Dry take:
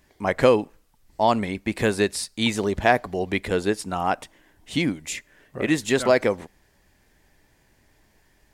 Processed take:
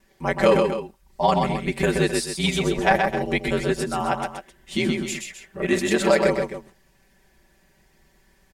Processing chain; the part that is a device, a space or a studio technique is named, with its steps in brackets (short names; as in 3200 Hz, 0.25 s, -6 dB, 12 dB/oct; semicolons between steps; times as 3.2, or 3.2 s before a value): ring-modulated robot voice (ring modulator 46 Hz; comb 5.2 ms, depth 94%); tapped delay 0.126/0.262 s -4.5/-12 dB